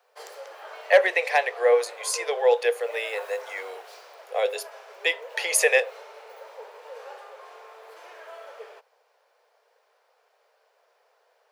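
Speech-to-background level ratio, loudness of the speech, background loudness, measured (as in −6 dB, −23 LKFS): 19.0 dB, −23.5 LKFS, −42.5 LKFS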